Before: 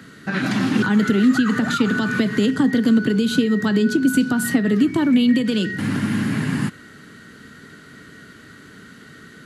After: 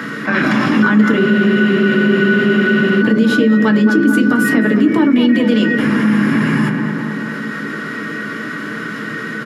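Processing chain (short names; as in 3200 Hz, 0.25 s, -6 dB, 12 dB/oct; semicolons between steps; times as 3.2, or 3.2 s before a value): tape echo 0.216 s, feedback 65%, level -7 dB, low-pass 1600 Hz; harmoniser -4 st -17 dB, +5 st -17 dB; reverb RT60 0.15 s, pre-delay 3 ms, DRR 6 dB; spectral freeze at 1.21, 1.79 s; fast leveller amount 50%; gain -7.5 dB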